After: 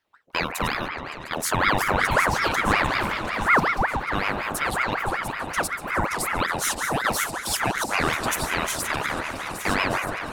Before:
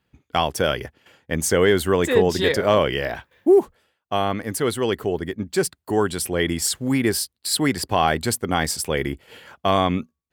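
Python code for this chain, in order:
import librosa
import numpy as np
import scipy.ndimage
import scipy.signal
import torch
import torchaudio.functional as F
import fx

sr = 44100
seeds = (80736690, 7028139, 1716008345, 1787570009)

p1 = fx.reverse_delay_fb(x, sr, ms=614, feedback_pct=57, wet_db=-8.5)
p2 = fx.high_shelf(p1, sr, hz=8700.0, db=4.0)
p3 = p2 + fx.echo_opening(p2, sr, ms=141, hz=750, octaves=1, feedback_pct=70, wet_db=-6, dry=0)
p4 = fx.ring_lfo(p3, sr, carrier_hz=1100.0, swing_pct=65, hz=5.4)
y = p4 * librosa.db_to_amplitude(-2.5)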